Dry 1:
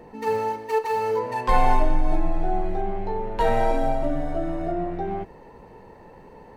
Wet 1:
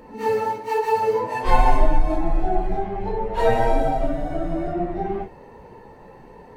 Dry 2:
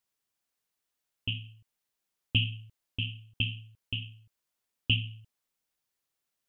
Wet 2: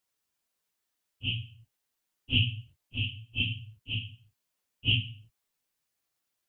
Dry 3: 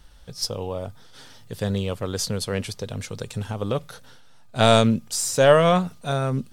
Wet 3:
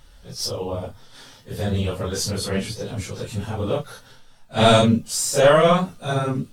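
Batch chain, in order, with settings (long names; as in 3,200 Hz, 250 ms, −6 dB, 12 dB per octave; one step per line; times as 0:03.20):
random phases in long frames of 100 ms
level +2 dB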